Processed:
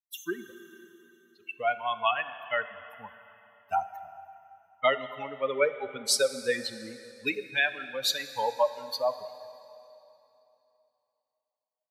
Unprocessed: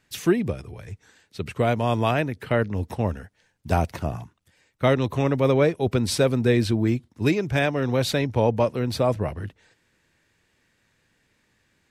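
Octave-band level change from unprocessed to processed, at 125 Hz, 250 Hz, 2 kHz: −31.5, −19.5, −0.5 decibels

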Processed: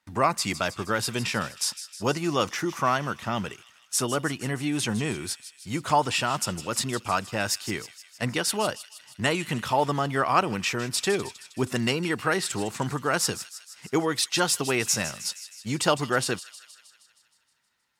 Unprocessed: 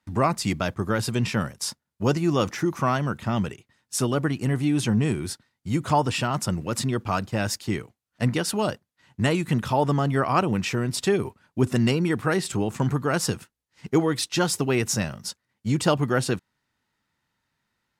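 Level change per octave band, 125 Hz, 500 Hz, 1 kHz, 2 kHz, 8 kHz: −7.5, −2.5, +0.5, +2.0, +3.0 decibels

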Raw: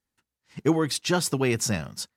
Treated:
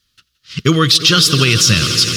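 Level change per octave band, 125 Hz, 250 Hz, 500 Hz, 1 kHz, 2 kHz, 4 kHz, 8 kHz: +15.0, +9.0, +6.0, +11.5, +15.5, +22.0, +14.0 decibels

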